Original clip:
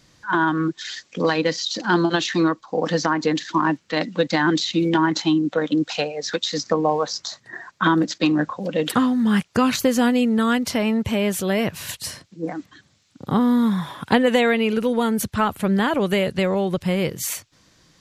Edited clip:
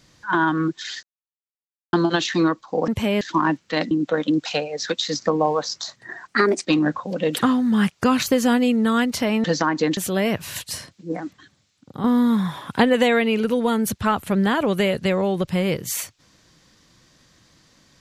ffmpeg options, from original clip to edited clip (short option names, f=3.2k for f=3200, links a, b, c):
-filter_complex "[0:a]asplit=11[a][b][c][d][e][f][g][h][i][j][k];[a]atrim=end=1.03,asetpts=PTS-STARTPTS,afade=t=out:st=1.026:d=0.004:c=hsin[l];[b]atrim=start=1.03:end=1.93,asetpts=PTS-STARTPTS,volume=0[m];[c]atrim=start=1.93:end=2.882,asetpts=PTS-STARTPTS,afade=t=in:d=0.004:c=hsin[n];[d]atrim=start=10.968:end=11.302[o];[e]atrim=start=3.408:end=4.112[p];[f]atrim=start=5.348:end=7.724[q];[g]atrim=start=7.72:end=8.17,asetpts=PTS-STARTPTS,asetrate=55125,aresample=44100[r];[h]atrim=start=8.166:end=10.972[s];[i]atrim=start=2.878:end=3.412[t];[j]atrim=start=11.298:end=13.37,asetpts=PTS-STARTPTS,afade=t=out:st=1.242:d=0.83:silence=0.354813[u];[k]atrim=start=13.37,asetpts=PTS-STARTPTS,afade=t=in:d=0.004:c=hsin:silence=0.354813[v];[l][m][n]concat=n=3:v=0:a=1[w];[w][o]acrossfade=d=0.004:c1=hsin:c2=hsin[x];[x][p]acrossfade=d=0.004:c1=hsin:c2=hsin[y];[y][q]acrossfade=d=0.004:c1=hsin:c2=hsin[z];[z][r]acrossfade=d=0.004:c1=hsin:c2=hsin[aa];[aa][s]acrossfade=d=0.004:c1=hsin:c2=hsin[ab];[ab][t]acrossfade=d=0.004:c1=hsin:c2=hsin[ac];[u][v]concat=n=2:v=0:a=1[ad];[ac][ad]acrossfade=d=0.004:c1=hsin:c2=hsin"